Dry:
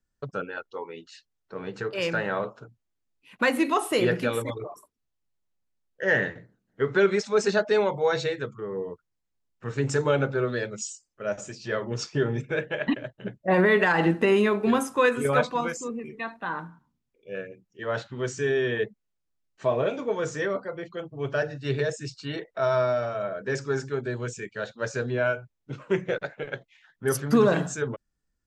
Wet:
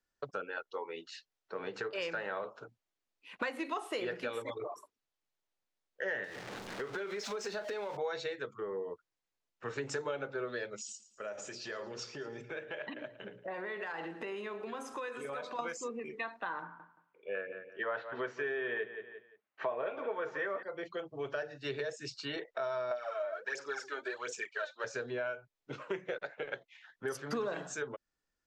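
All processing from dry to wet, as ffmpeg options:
ffmpeg -i in.wav -filter_complex "[0:a]asettb=1/sr,asplit=3[link_01][link_02][link_03];[link_01]atrim=end=6.244[link_04];[link_02]atrim=start=6.24:end=7.97,asetpts=PTS-STARTPTS,afade=type=in:duration=0.004:curve=qsin,afade=type=out:start_time=1.726:duration=0.004:curve=qsin,aeval=exprs='val(0)+0.5*0.02*sgn(val(0))':channel_layout=same,acompressor=threshold=-32dB:ratio=4:attack=3.2:release=140:knee=1:detection=peak,asplit=2[link_05][link_06];[link_06]adelay=39,volume=-13dB[link_07];[link_05][link_07]amix=inputs=2:normalize=0,atrim=end_sample=76293[link_08];[link_03]atrim=start=7.966[link_09];[link_04][link_08]acrossfade=duration=0.004:curve1=hsin:curve2=qsin[link_10];[link_10][link_09]acrossfade=duration=0.004:curve1=qsin:curve2=hsin,asettb=1/sr,asplit=3[link_11][link_12][link_13];[link_11]atrim=end=10.774[link_14];[link_12]atrim=start=10.77:end=15.59,asetpts=PTS-STARTPTS,afade=type=in:duration=0.004:curve=qsin,afade=type=out:start_time=4.816:duration=0.004:curve=qsin,bandreject=frequency=60:width_type=h:width=6,bandreject=frequency=120:width_type=h:width=6,bandreject=frequency=180:width_type=h:width=6,bandreject=frequency=240:width_type=h:width=6,bandreject=frequency=300:width_type=h:width=6,bandreject=frequency=360:width_type=h:width=6,bandreject=frequency=420:width_type=h:width=6,bandreject=frequency=480:width_type=h:width=6,bandreject=frequency=540:width_type=h:width=6,bandreject=frequency=600:width_type=h:width=6,acompressor=threshold=-38dB:ratio=4:attack=3.2:release=140:knee=1:detection=peak,aecho=1:1:112|224|336|448:0.141|0.065|0.0299|0.0137,atrim=end_sample=212562[link_15];[link_13]atrim=start=15.586[link_16];[link_14][link_15]acrossfade=duration=0.004:curve1=hsin:curve2=qsin[link_17];[link_17][link_16]acrossfade=duration=0.004:curve1=qsin:curve2=hsin,asettb=1/sr,asplit=3[link_18][link_19][link_20];[link_18]atrim=end=16.624[link_21];[link_19]atrim=start=16.62:end=20.63,asetpts=PTS-STARTPTS,afade=type=in:duration=0.004:curve=qsin,afade=type=out:start_time=4.006:duration=0.004:curve=qsin,highpass=120,lowpass=2400,equalizer=frequency=1500:width_type=o:width=2.9:gain=8,aecho=1:1:174|348|522:0.2|0.0459|0.0106,atrim=end_sample=176841[link_22];[link_20]atrim=start=20.626[link_23];[link_21][link_22]acrossfade=duration=0.004:curve1=hsin:curve2=qsin[link_24];[link_24][link_23]acrossfade=duration=0.004:curve1=qsin:curve2=hsin,asettb=1/sr,asplit=3[link_25][link_26][link_27];[link_25]atrim=end=22.914[link_28];[link_26]atrim=start=22.91:end=24.84,asetpts=PTS-STARTPTS,afade=type=in:duration=0.004:curve=qsin,afade=type=out:start_time=1.926:duration=0.004:curve=qsin,highpass=580,aphaser=in_gain=1:out_gain=1:delay=3.4:decay=0.66:speed=1.4:type=sinusoidal[link_29];[link_27]atrim=start=24.836[link_30];[link_28][link_29]acrossfade=duration=0.004:curve1=hsin:curve2=qsin[link_31];[link_31][link_30]acrossfade=duration=0.004:curve1=qsin:curve2=hsin,acrossover=split=330 7200:gain=0.2 1 0.2[link_32][link_33][link_34];[link_32][link_33][link_34]amix=inputs=3:normalize=0,acompressor=threshold=-37dB:ratio=4,volume=1dB" out.wav

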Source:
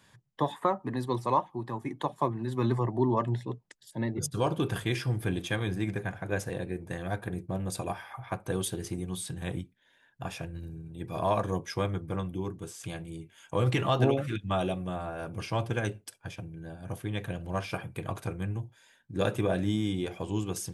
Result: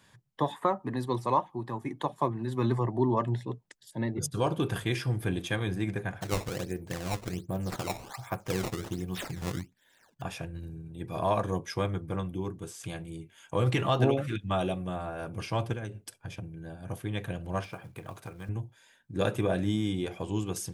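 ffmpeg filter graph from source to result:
ffmpeg -i in.wav -filter_complex "[0:a]asettb=1/sr,asplit=3[link_01][link_02][link_03];[link_01]atrim=end=6.214[link_04];[link_02]atrim=start=6.21:end=10.22,asetpts=PTS-STARTPTS,afade=type=in:duration=0.004:curve=qsin,afade=type=out:start_time=4.006:duration=0.004:curve=qsin,acrusher=samples=16:mix=1:aa=0.000001:lfo=1:lforange=25.6:lforate=1.3,equalizer=frequency=6800:width=1.1:gain=4[link_05];[link_03]atrim=start=10.216[link_06];[link_04][link_05]acrossfade=duration=0.004:curve1=hsin:curve2=qsin[link_07];[link_07][link_06]acrossfade=duration=0.004:curve1=qsin:curve2=hsin,asettb=1/sr,asplit=3[link_08][link_09][link_10];[link_08]atrim=end=15.734[link_11];[link_09]atrim=start=15.73:end=16.44,asetpts=PTS-STARTPTS,afade=type=in:duration=0.004:curve=qsin,afade=type=out:start_time=0.706:duration=0.004:curve=qsin,lowshelf=frequency=340:gain=6,acompressor=threshold=-34dB:ratio=5:attack=3.2:release=140:knee=1:detection=peak[link_12];[link_10]atrim=start=16.436[link_13];[link_11][link_12]acrossfade=duration=0.004:curve1=hsin:curve2=qsin[link_14];[link_14][link_13]acrossfade=duration=0.004:curve1=qsin:curve2=hsin,asettb=1/sr,asplit=3[link_15][link_16][link_17];[link_15]atrim=end=17.644[link_18];[link_16]atrim=start=17.64:end=18.49,asetpts=PTS-STARTPTS,afade=type=in:duration=0.004:curve=qsin,afade=type=out:start_time=0.846:duration=0.004:curve=qsin,acrossover=split=640|1600[link_19][link_20][link_21];[link_19]acompressor=threshold=-42dB:ratio=4[link_22];[link_20]acompressor=threshold=-46dB:ratio=4[link_23];[link_21]acompressor=threshold=-53dB:ratio=4[link_24];[link_22][link_23][link_24]amix=inputs=3:normalize=0,highpass=43,acrusher=bits=6:mode=log:mix=0:aa=0.000001[link_25];[link_17]atrim=start=18.486[link_26];[link_18][link_25]acrossfade=duration=0.004:curve1=hsin:curve2=qsin[link_27];[link_27][link_26]acrossfade=duration=0.004:curve1=qsin:curve2=hsin" out.wav

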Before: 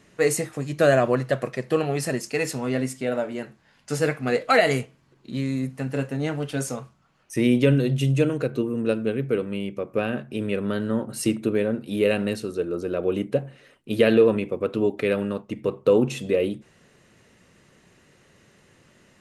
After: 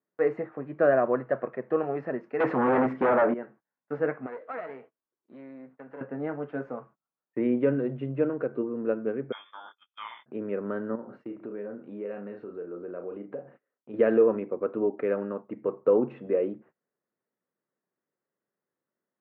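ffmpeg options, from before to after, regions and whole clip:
ffmpeg -i in.wav -filter_complex "[0:a]asettb=1/sr,asplit=3[link_01][link_02][link_03];[link_01]atrim=end=2.404[link_04];[link_02]atrim=start=2.4:end=3.34,asetpts=PTS-STARTPTS,afade=type=in:duration=0.004:curve=qsin,afade=type=out:start_time=0.936:duration=0.004:curve=qsin,acontrast=78,aeval=exprs='(tanh(7.08*val(0)+0.6)-tanh(0.6))/7.08':channel_layout=same,aeval=exprs='0.224*sin(PI/2*2.51*val(0)/0.224)':channel_layout=same[link_05];[link_03]atrim=start=3.336[link_06];[link_04][link_05]acrossfade=duration=0.004:curve1=hsin:curve2=qsin[link_07];[link_07][link_06]acrossfade=duration=0.004:curve1=qsin:curve2=hsin,asettb=1/sr,asplit=3[link_08][link_09][link_10];[link_08]atrim=end=4.264[link_11];[link_09]atrim=start=4.26:end=6.01,asetpts=PTS-STARTPTS,afade=type=in:duration=0.004:curve=qsin,afade=type=out:start_time=1.746:duration=0.004:curve=qsin,bass=frequency=250:gain=-12,treble=frequency=4000:gain=8,acompressor=threshold=-43dB:ratio=1.5:attack=3.2:release=140:knee=1:detection=peak,aeval=exprs='clip(val(0),-1,0.0112)':channel_layout=same[link_12];[link_10]atrim=start=6.006[link_13];[link_11][link_12]acrossfade=duration=0.004:curve1=hsin:curve2=qsin[link_14];[link_14][link_13]acrossfade=duration=0.004:curve1=qsin:curve2=hsin,asettb=1/sr,asplit=3[link_15][link_16][link_17];[link_15]atrim=end=9.324[link_18];[link_16]atrim=start=9.32:end=10.26,asetpts=PTS-STARTPTS,afade=type=in:duration=0.004:curve=qsin,afade=type=out:start_time=0.936:duration=0.004:curve=qsin,asplit=2[link_19][link_20];[link_20]adelay=27,volume=-4.5dB[link_21];[link_19][link_21]amix=inputs=2:normalize=0,atrim=end_sample=41454,lowpass=frequency=3100:width_type=q:width=0.5098,lowpass=frequency=3100:width_type=q:width=0.6013,lowpass=frequency=3100:width_type=q:width=0.9,lowpass=frequency=3100:width_type=q:width=2.563,afreqshift=-3700[link_22];[link_17]atrim=start=10.256[link_23];[link_18][link_22]acrossfade=duration=0.004:curve1=hsin:curve2=qsin[link_24];[link_24][link_23]acrossfade=duration=0.004:curve1=qsin:curve2=hsin,asettb=1/sr,asplit=3[link_25][link_26][link_27];[link_25]atrim=end=10.954[link_28];[link_26]atrim=start=10.95:end=13.94,asetpts=PTS-STARTPTS,afade=type=in:duration=0.004:curve=qsin,afade=type=out:start_time=2.986:duration=0.004:curve=qsin,asplit=2[link_29][link_30];[link_30]adelay=34,volume=-6dB[link_31];[link_29][link_31]amix=inputs=2:normalize=0,atrim=end_sample=131859,acompressor=threshold=-33dB:ratio=2.5:attack=3.2:release=140:knee=1:detection=peak[link_32];[link_27]atrim=start=13.936[link_33];[link_28][link_32]acrossfade=duration=0.004:curve1=hsin:curve2=qsin[link_34];[link_34][link_33]acrossfade=duration=0.004:curve1=qsin:curve2=hsin,lowpass=frequency=1600:width=0.5412,lowpass=frequency=1600:width=1.3066,agate=range=-26dB:threshold=-46dB:ratio=16:detection=peak,highpass=260,volume=-3dB" out.wav

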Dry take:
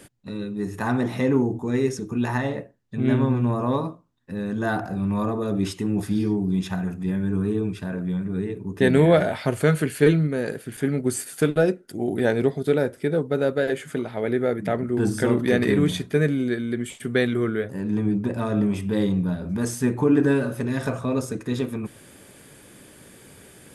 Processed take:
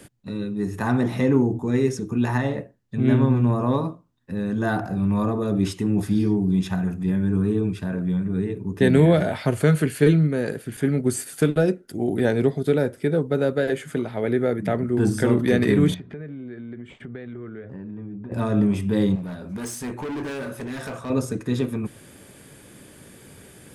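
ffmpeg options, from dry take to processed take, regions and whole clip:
ffmpeg -i in.wav -filter_complex "[0:a]asettb=1/sr,asplit=3[link_01][link_02][link_03];[link_01]atrim=end=15.944[link_04];[link_02]atrim=start=15.94:end=18.32,asetpts=PTS-STARTPTS,afade=type=in:duration=0.004:curve=qsin,afade=type=out:start_time=2.376:duration=0.004:curve=qsin,lowpass=2200,acompressor=threshold=-36dB:ratio=5:attack=3.2:release=140:knee=1:detection=peak[link_05];[link_03]atrim=start=18.316[link_06];[link_04][link_05]acrossfade=duration=0.004:curve1=hsin:curve2=qsin[link_07];[link_07][link_06]acrossfade=duration=0.004:curve1=qsin:curve2=hsin,asettb=1/sr,asplit=3[link_08][link_09][link_10];[link_08]atrim=end=19.154[link_11];[link_09]atrim=start=19.15:end=21.1,asetpts=PTS-STARTPTS,afade=type=in:duration=0.004:curve=qsin,afade=type=out:start_time=1.946:duration=0.004:curve=qsin,lowshelf=frequency=310:gain=-11,asoftclip=type=hard:threshold=-29.5dB,asplit=2[link_12][link_13];[link_13]adelay=20,volume=-13.5dB[link_14];[link_12][link_14]amix=inputs=2:normalize=0,atrim=end_sample=85995[link_15];[link_10]atrim=start=21.096[link_16];[link_11][link_15]acrossfade=duration=0.004:curve1=hsin:curve2=qsin[link_17];[link_17][link_16]acrossfade=duration=0.004:curve1=qsin:curve2=hsin,equalizer=frequency=100:width=0.4:gain=3.5,acrossover=split=360|3000[link_18][link_19][link_20];[link_19]acompressor=threshold=-19dB:ratio=6[link_21];[link_18][link_21][link_20]amix=inputs=3:normalize=0" out.wav

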